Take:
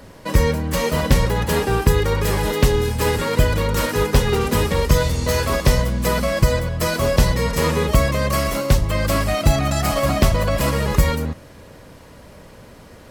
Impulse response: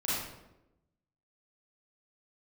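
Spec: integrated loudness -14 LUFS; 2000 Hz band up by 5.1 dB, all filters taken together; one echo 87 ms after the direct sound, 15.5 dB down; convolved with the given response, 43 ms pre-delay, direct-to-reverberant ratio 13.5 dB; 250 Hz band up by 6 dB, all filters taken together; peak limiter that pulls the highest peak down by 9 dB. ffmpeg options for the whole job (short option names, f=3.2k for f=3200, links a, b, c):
-filter_complex "[0:a]equalizer=f=250:t=o:g=8,equalizer=f=2k:t=o:g=6,alimiter=limit=-7dB:level=0:latency=1,aecho=1:1:87:0.168,asplit=2[a][b];[1:a]atrim=start_sample=2205,adelay=43[c];[b][c]afir=irnorm=-1:irlink=0,volume=-20.5dB[d];[a][d]amix=inputs=2:normalize=0,volume=4dB"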